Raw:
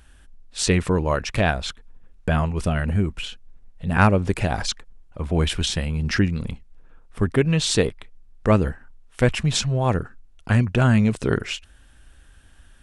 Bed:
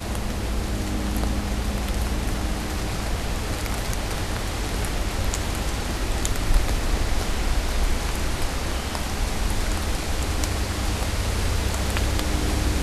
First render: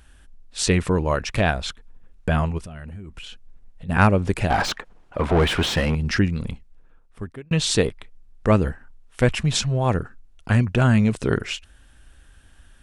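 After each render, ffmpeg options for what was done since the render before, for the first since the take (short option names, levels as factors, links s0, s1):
-filter_complex "[0:a]asplit=3[s0][s1][s2];[s0]afade=t=out:st=2.57:d=0.02[s3];[s1]acompressor=threshold=0.0224:ratio=12:attack=3.2:release=140:knee=1:detection=peak,afade=t=in:st=2.57:d=0.02,afade=t=out:st=3.88:d=0.02[s4];[s2]afade=t=in:st=3.88:d=0.02[s5];[s3][s4][s5]amix=inputs=3:normalize=0,asettb=1/sr,asplit=3[s6][s7][s8];[s6]atrim=end=4.504[s9];[s7]atrim=start=4.5:end=5.95,asetpts=PTS-STARTPTS,afade=t=in:d=0.004:c=qsin,afade=t=out:st=1.446:d=0.004:c=qsin,asplit=2[s10][s11];[s11]highpass=f=720:p=1,volume=20,asoftclip=type=tanh:threshold=0.355[s12];[s10][s12]amix=inputs=2:normalize=0,lowpass=f=1300:p=1,volume=0.501[s13];[s8]atrim=start=5.946[s14];[s9][s13]acrossfade=d=0.004:c1=hsin:c2=qsin[s15];[s15][s14]acrossfade=d=0.004:c1=qsin:c2=hsin,asplit=2[s16][s17];[s16]atrim=end=7.51,asetpts=PTS-STARTPTS,afade=t=out:st=6.49:d=1.02[s18];[s17]atrim=start=7.51,asetpts=PTS-STARTPTS,afade=t=in:d=0.004:c=hsin[s19];[s18][s19]concat=n=2:v=0:a=1"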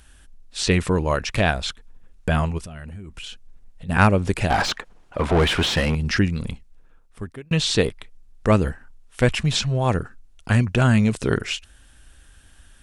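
-filter_complex "[0:a]acrossover=split=4800[s0][s1];[s1]acompressor=threshold=0.0126:ratio=4:attack=1:release=60[s2];[s0][s2]amix=inputs=2:normalize=0,equalizer=f=8700:t=o:w=2.5:g=6"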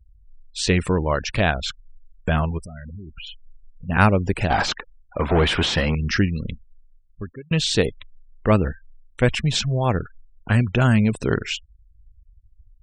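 -af "afftfilt=real='re*gte(hypot(re,im),0.02)':imag='im*gte(hypot(re,im),0.02)':win_size=1024:overlap=0.75"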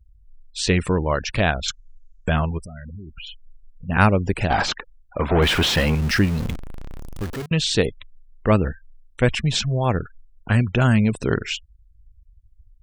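-filter_complex "[0:a]asettb=1/sr,asplit=3[s0][s1][s2];[s0]atrim=end=1.684[s3];[s1]atrim=start=1.68:end=2.43,asetpts=PTS-STARTPTS,afade=t=in:d=0.004:c=qsin,afade=t=out:st=0.746:d=0.004:c=qsin,lowpass=f=6600:t=q:w=4.9[s4];[s2]atrim=start=2.426[s5];[s3][s4]acrossfade=d=0.004:c1=hsin:c2=qsin[s6];[s6][s5]acrossfade=d=0.004:c1=qsin:c2=hsin,asettb=1/sr,asplit=3[s7][s8][s9];[s7]atrim=end=5.424[s10];[s8]atrim=start=5.42:end=7.46,asetpts=PTS-STARTPTS,afade=t=in:d=0.004:c=qsin,afade=t=out:st=2.036:d=0.004:c=qsin,aeval=exprs='val(0)+0.5*0.0501*sgn(val(0))':c=same[s11];[s9]atrim=start=7.456[s12];[s10][s11]acrossfade=d=0.004:c1=hsin:c2=qsin[s13];[s13][s12]acrossfade=d=0.004:c1=qsin:c2=hsin"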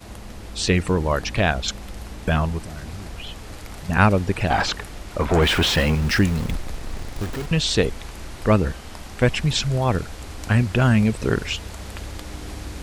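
-filter_complex "[1:a]volume=0.299[s0];[0:a][s0]amix=inputs=2:normalize=0"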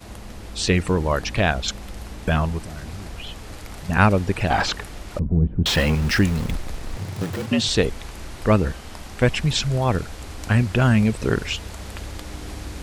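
-filter_complex "[0:a]asettb=1/sr,asplit=3[s0][s1][s2];[s0]atrim=end=5.194[s3];[s1]atrim=start=5.19:end=5.66,asetpts=PTS-STARTPTS,afade=t=in:d=0.004:c=qsin,afade=t=out:st=0.466:d=0.004:c=qsin,lowpass=f=180:t=q:w=1.5[s4];[s2]atrim=start=5.656[s5];[s3][s4]acrossfade=d=0.004:c1=hsin:c2=qsin[s6];[s6][s5]acrossfade=d=0.004:c1=qsin:c2=hsin,asettb=1/sr,asplit=3[s7][s8][s9];[s7]atrim=end=6.974[s10];[s8]atrim=start=6.97:end=7.68,asetpts=PTS-STARTPTS,afade=t=in:d=0.004:c=qsin,afade=t=out:st=0.706:d=0.004:c=qsin,afreqshift=78[s11];[s9]atrim=start=7.676[s12];[s10][s11]acrossfade=d=0.004:c1=hsin:c2=qsin[s13];[s13][s12]acrossfade=d=0.004:c1=qsin:c2=hsin"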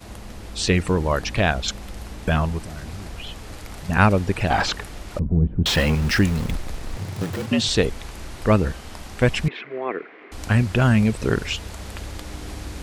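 -filter_complex "[0:a]asettb=1/sr,asplit=3[s0][s1][s2];[s0]atrim=end=9.484[s3];[s1]atrim=start=9.48:end=10.32,asetpts=PTS-STARTPTS,afade=t=in:d=0.004:c=qsin,afade=t=out:st=0.836:d=0.004:c=qsin,highpass=f=320:w=0.5412,highpass=f=320:w=1.3066,equalizer=f=400:t=q:w=4:g=4,equalizer=f=570:t=q:w=4:g=-8,equalizer=f=860:t=q:w=4:g=-9,equalizer=f=1400:t=q:w=4:g=-4,equalizer=f=2100:t=q:w=4:g=7,lowpass=f=2200:w=0.5412,lowpass=f=2200:w=1.3066[s4];[s2]atrim=start=10.316[s5];[s3][s4]acrossfade=d=0.004:c1=hsin:c2=qsin[s6];[s6][s5]acrossfade=d=0.004:c1=qsin:c2=hsin"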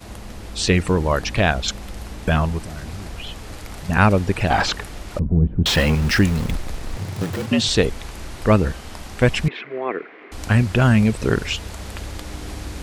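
-af "volume=1.26,alimiter=limit=0.794:level=0:latency=1"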